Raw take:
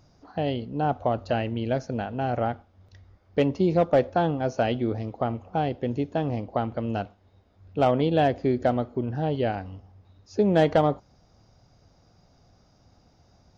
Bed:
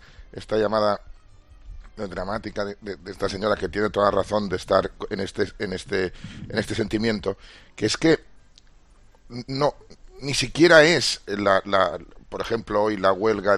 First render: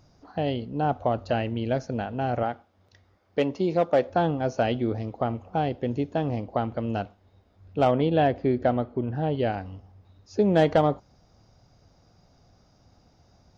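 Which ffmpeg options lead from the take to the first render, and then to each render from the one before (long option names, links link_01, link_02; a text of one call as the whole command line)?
ffmpeg -i in.wav -filter_complex "[0:a]asettb=1/sr,asplit=3[link_01][link_02][link_03];[link_01]atrim=end=2.434[link_04];[link_02]atrim=start=2.43:end=4.1,asetpts=PTS-STARTPTS,afade=type=in:duration=0.004:curve=qsin,afade=type=out:start_time=1.666:duration=0.004:curve=qsin,highpass=frequency=280:poles=1[link_05];[link_03]atrim=start=4.096[link_06];[link_04][link_05]acrossfade=duration=0.004:curve1=hsin:curve2=qsin[link_07];[link_07][link_06]acrossfade=duration=0.004:curve1=qsin:curve2=hsin,asettb=1/sr,asplit=3[link_08][link_09][link_10];[link_08]atrim=end=7.954[link_11];[link_09]atrim=start=7.95:end=9.39,asetpts=PTS-STARTPTS,afade=type=in:duration=0.004:curve=qsin,afade=type=out:start_time=1.436:duration=0.004:curve=qsin,lowpass=3700[link_12];[link_10]atrim=start=9.386[link_13];[link_11][link_12]acrossfade=duration=0.004:curve1=hsin:curve2=qsin[link_14];[link_14][link_13]acrossfade=duration=0.004:curve1=qsin:curve2=hsin" out.wav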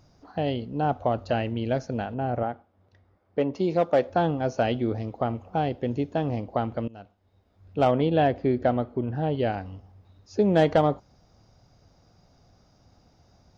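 ffmpeg -i in.wav -filter_complex "[0:a]asettb=1/sr,asplit=3[link_01][link_02][link_03];[link_01]atrim=end=2.144[link_04];[link_02]atrim=start=2.14:end=3.54,asetpts=PTS-STARTPTS,afade=type=in:duration=0.004:curve=qsin,afade=type=out:start_time=1.396:duration=0.004:curve=qsin,lowpass=frequency=1200:poles=1[link_05];[link_03]atrim=start=3.536[link_06];[link_04][link_05]acrossfade=duration=0.004:curve1=hsin:curve2=qsin[link_07];[link_07][link_06]acrossfade=duration=0.004:curve1=qsin:curve2=hsin,asplit=2[link_08][link_09];[link_08]atrim=end=6.88,asetpts=PTS-STARTPTS,afade=type=out:start_time=6.876:duration=0.004:curve=hsin:silence=0.0707946[link_10];[link_09]atrim=start=6.88,asetpts=PTS-STARTPTS,afade=type=in:duration=0.94:silence=0.0707946[link_11];[link_10][link_11]concat=n=2:v=0:a=1" out.wav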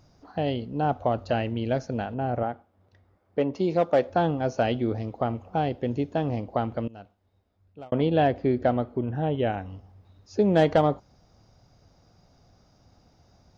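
ffmpeg -i in.wav -filter_complex "[0:a]asettb=1/sr,asplit=3[link_01][link_02][link_03];[link_01]atrim=end=8.984[link_04];[link_02]atrim=start=8.98:end=9.7,asetpts=PTS-STARTPTS,afade=type=in:duration=0.004:curve=qsin,afade=type=out:start_time=0.716:duration=0.004:curve=qsin,asuperstop=centerf=4600:order=12:qfactor=3.3[link_05];[link_03]atrim=start=9.696[link_06];[link_04][link_05]acrossfade=duration=0.004:curve1=hsin:curve2=qsin[link_07];[link_07][link_06]acrossfade=duration=0.004:curve1=qsin:curve2=hsin,asplit=2[link_08][link_09];[link_08]atrim=end=7.92,asetpts=PTS-STARTPTS,afade=type=out:start_time=6.97:duration=0.95[link_10];[link_09]atrim=start=7.92,asetpts=PTS-STARTPTS,afade=type=in:duration=0.004:curve=hsin[link_11];[link_10][link_11]concat=n=2:v=0:a=1" out.wav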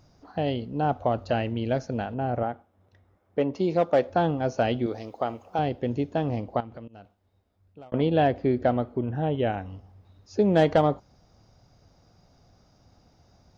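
ffmpeg -i in.wav -filter_complex "[0:a]asettb=1/sr,asplit=3[link_01][link_02][link_03];[link_01]atrim=end=2.504[link_04];[link_02]atrim=start=2.5:end=3.42,asetpts=PTS-STARTPTS,afade=type=in:duration=0.004:curve=qsin,afade=type=out:start_time=0.916:duration=0.004:curve=qsin,bandreject=frequency=4600:width=9.3[link_05];[link_03]atrim=start=3.416[link_06];[link_04][link_05]acrossfade=duration=0.004:curve1=hsin:curve2=qsin[link_07];[link_07][link_06]acrossfade=duration=0.004:curve1=qsin:curve2=hsin,asettb=1/sr,asplit=3[link_08][link_09][link_10];[link_08]atrim=end=4.864[link_11];[link_09]atrim=start=4.86:end=5.59,asetpts=PTS-STARTPTS,afade=type=in:duration=0.004:curve=qsin,afade=type=out:start_time=0.726:duration=0.004:curve=qsin,bass=frequency=250:gain=-12,treble=frequency=4000:gain=9[link_12];[link_10]atrim=start=5.586[link_13];[link_11][link_12]acrossfade=duration=0.004:curve1=hsin:curve2=qsin[link_14];[link_14][link_13]acrossfade=duration=0.004:curve1=qsin:curve2=hsin,asettb=1/sr,asplit=3[link_15][link_16][link_17];[link_15]atrim=end=6.604[link_18];[link_16]atrim=start=6.6:end=7.94,asetpts=PTS-STARTPTS,afade=type=in:duration=0.004:curve=qsin,afade=type=out:start_time=1.336:duration=0.004:curve=qsin,acompressor=threshold=-41dB:ratio=3:attack=3.2:release=140:knee=1:detection=peak[link_19];[link_17]atrim=start=7.936[link_20];[link_18][link_19]acrossfade=duration=0.004:curve1=hsin:curve2=qsin[link_21];[link_21][link_20]acrossfade=duration=0.004:curve1=qsin:curve2=hsin" out.wav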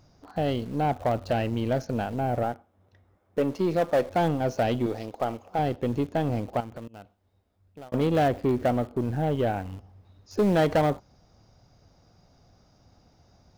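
ffmpeg -i in.wav -filter_complex "[0:a]asplit=2[link_01][link_02];[link_02]acrusher=bits=4:dc=4:mix=0:aa=0.000001,volume=-7.5dB[link_03];[link_01][link_03]amix=inputs=2:normalize=0,asoftclip=type=tanh:threshold=-16.5dB" out.wav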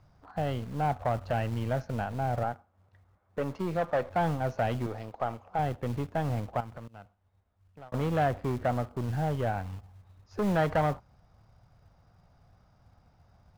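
ffmpeg -i in.wav -filter_complex "[0:a]acrossover=split=210[link_01][link_02];[link_01]acrusher=bits=5:mode=log:mix=0:aa=0.000001[link_03];[link_02]bandpass=frequency=1200:width_type=q:width=0.96:csg=0[link_04];[link_03][link_04]amix=inputs=2:normalize=0" out.wav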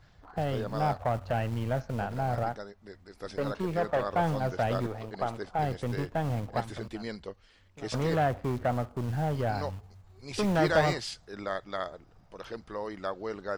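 ffmpeg -i in.wav -i bed.wav -filter_complex "[1:a]volume=-15dB[link_01];[0:a][link_01]amix=inputs=2:normalize=0" out.wav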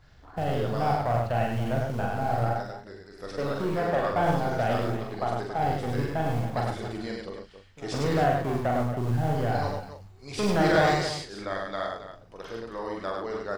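ffmpeg -i in.wav -filter_complex "[0:a]asplit=2[link_01][link_02];[link_02]adelay=41,volume=-7dB[link_03];[link_01][link_03]amix=inputs=2:normalize=0,asplit=2[link_04][link_05];[link_05]aecho=0:1:43.73|102|277:0.562|0.708|0.282[link_06];[link_04][link_06]amix=inputs=2:normalize=0" out.wav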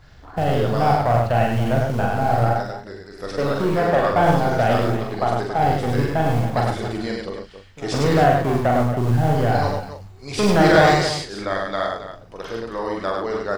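ffmpeg -i in.wav -af "volume=8dB" out.wav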